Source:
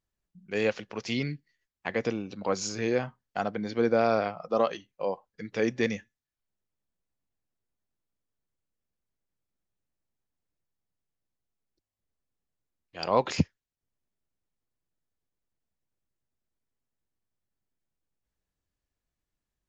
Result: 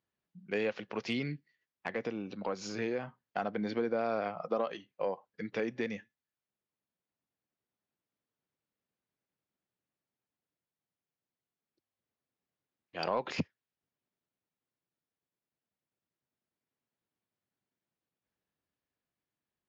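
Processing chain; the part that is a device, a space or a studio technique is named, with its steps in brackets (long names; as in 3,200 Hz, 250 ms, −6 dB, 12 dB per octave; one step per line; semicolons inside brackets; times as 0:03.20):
AM radio (band-pass filter 140–3,800 Hz; downward compressor 6 to 1, threshold −30 dBFS, peak gain reduction 12 dB; soft clipping −20 dBFS, distortion −25 dB; amplitude tremolo 0.23 Hz, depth 30%)
level +2 dB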